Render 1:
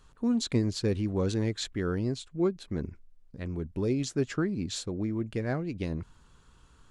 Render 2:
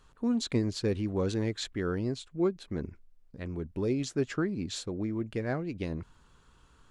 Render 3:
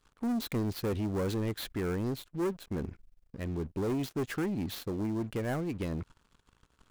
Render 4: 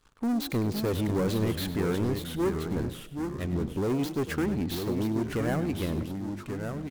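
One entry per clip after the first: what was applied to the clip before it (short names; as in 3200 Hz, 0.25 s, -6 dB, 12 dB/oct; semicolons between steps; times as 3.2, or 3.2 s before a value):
tone controls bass -3 dB, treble -3 dB
switching dead time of 0.058 ms; sample leveller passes 3; gain -8.5 dB
echoes that change speed 0.482 s, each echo -2 st, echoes 2, each echo -6 dB; frequency-shifting echo 0.1 s, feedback 36%, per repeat +46 Hz, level -14 dB; gain +3.5 dB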